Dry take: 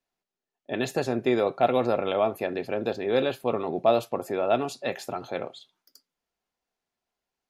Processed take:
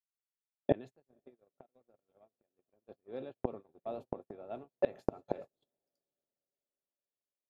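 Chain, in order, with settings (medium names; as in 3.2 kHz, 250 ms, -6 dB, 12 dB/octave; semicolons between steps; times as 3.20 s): hum notches 60/120/180 Hz; inverted gate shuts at -25 dBFS, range -30 dB; tilt shelf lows +6.5 dB, about 1.1 kHz; echo that smears into a reverb 530 ms, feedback 55%, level -15.5 dB; 0.74–2.89 s: compression 16:1, threshold -50 dBFS, peak gain reduction 11 dB; gate -50 dBFS, range -40 dB; trim +7 dB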